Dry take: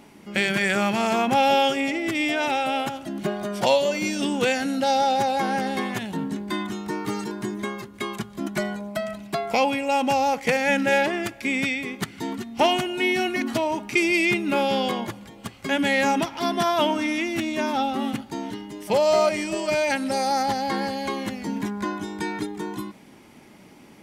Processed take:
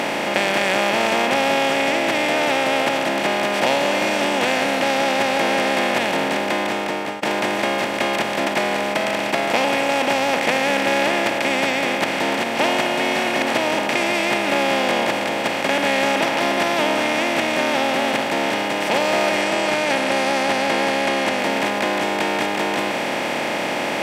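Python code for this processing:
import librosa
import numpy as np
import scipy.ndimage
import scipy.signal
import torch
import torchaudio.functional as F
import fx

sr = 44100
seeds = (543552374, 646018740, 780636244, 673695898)

y = fx.studio_fade_out(x, sr, start_s=6.27, length_s=0.96)
y = fx.ellip_lowpass(y, sr, hz=11000.0, order=4, stop_db=40, at=(19.41, 21.39))
y = fx.bin_compress(y, sr, power=0.2)
y = fx.low_shelf(y, sr, hz=86.0, db=-10.0)
y = y * librosa.db_to_amplitude(-6.5)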